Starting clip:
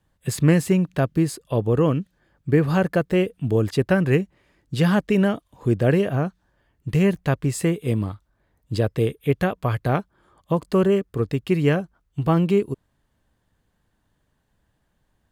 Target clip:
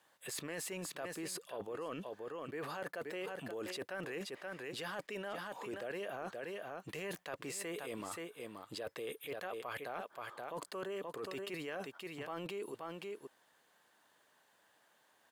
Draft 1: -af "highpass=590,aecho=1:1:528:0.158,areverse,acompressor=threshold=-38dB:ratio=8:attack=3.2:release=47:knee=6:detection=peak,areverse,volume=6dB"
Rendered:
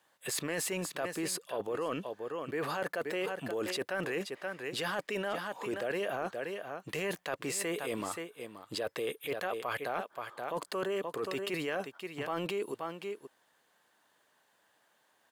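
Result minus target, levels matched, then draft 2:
downward compressor: peak gain reduction −8 dB
-af "highpass=590,aecho=1:1:528:0.158,areverse,acompressor=threshold=-47dB:ratio=8:attack=3.2:release=47:knee=6:detection=peak,areverse,volume=6dB"

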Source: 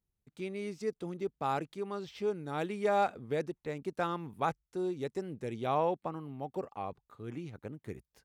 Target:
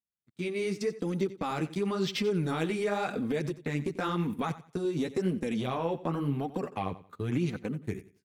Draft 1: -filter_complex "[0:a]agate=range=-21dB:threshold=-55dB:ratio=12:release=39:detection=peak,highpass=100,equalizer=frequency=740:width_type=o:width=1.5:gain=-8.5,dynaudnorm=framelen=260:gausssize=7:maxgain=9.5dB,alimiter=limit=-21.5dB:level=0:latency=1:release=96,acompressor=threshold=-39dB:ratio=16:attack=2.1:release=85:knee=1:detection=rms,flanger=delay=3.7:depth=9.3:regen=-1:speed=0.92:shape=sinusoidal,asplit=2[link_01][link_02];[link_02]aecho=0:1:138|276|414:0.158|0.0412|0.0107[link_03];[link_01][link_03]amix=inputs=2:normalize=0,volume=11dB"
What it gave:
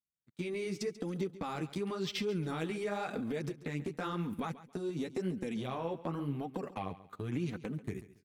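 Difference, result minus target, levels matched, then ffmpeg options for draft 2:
echo 48 ms late; downward compressor: peak gain reduction +6 dB
-filter_complex "[0:a]agate=range=-21dB:threshold=-55dB:ratio=12:release=39:detection=peak,highpass=100,equalizer=frequency=740:width_type=o:width=1.5:gain=-8.5,dynaudnorm=framelen=260:gausssize=7:maxgain=9.5dB,alimiter=limit=-21.5dB:level=0:latency=1:release=96,acompressor=threshold=-32.5dB:ratio=16:attack=2.1:release=85:knee=1:detection=rms,flanger=delay=3.7:depth=9.3:regen=-1:speed=0.92:shape=sinusoidal,asplit=2[link_01][link_02];[link_02]aecho=0:1:90|180|270:0.158|0.0412|0.0107[link_03];[link_01][link_03]amix=inputs=2:normalize=0,volume=11dB"

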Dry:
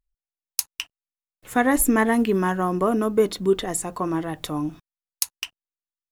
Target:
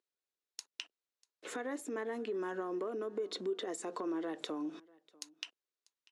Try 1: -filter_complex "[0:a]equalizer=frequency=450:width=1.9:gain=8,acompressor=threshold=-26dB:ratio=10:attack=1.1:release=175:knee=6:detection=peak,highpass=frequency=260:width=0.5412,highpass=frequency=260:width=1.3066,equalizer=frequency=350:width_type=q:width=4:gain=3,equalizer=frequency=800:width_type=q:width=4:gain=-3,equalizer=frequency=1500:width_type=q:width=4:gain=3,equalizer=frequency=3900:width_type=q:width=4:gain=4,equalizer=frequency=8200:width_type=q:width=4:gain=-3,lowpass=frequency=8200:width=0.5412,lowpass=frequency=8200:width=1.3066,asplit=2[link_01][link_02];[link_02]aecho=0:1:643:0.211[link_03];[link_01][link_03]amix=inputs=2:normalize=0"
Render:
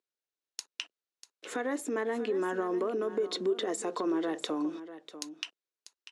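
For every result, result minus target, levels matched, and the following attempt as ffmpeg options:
echo-to-direct +11.5 dB; downward compressor: peak gain reduction −7 dB
-filter_complex "[0:a]equalizer=frequency=450:width=1.9:gain=8,acompressor=threshold=-26dB:ratio=10:attack=1.1:release=175:knee=6:detection=peak,highpass=frequency=260:width=0.5412,highpass=frequency=260:width=1.3066,equalizer=frequency=350:width_type=q:width=4:gain=3,equalizer=frequency=800:width_type=q:width=4:gain=-3,equalizer=frequency=1500:width_type=q:width=4:gain=3,equalizer=frequency=3900:width_type=q:width=4:gain=4,equalizer=frequency=8200:width_type=q:width=4:gain=-3,lowpass=frequency=8200:width=0.5412,lowpass=frequency=8200:width=1.3066,asplit=2[link_01][link_02];[link_02]aecho=0:1:643:0.0562[link_03];[link_01][link_03]amix=inputs=2:normalize=0"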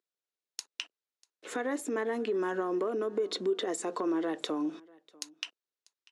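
downward compressor: peak gain reduction −7 dB
-filter_complex "[0:a]equalizer=frequency=450:width=1.9:gain=8,acompressor=threshold=-33.5dB:ratio=10:attack=1.1:release=175:knee=6:detection=peak,highpass=frequency=260:width=0.5412,highpass=frequency=260:width=1.3066,equalizer=frequency=350:width_type=q:width=4:gain=3,equalizer=frequency=800:width_type=q:width=4:gain=-3,equalizer=frequency=1500:width_type=q:width=4:gain=3,equalizer=frequency=3900:width_type=q:width=4:gain=4,equalizer=frequency=8200:width_type=q:width=4:gain=-3,lowpass=frequency=8200:width=0.5412,lowpass=frequency=8200:width=1.3066,asplit=2[link_01][link_02];[link_02]aecho=0:1:643:0.0562[link_03];[link_01][link_03]amix=inputs=2:normalize=0"

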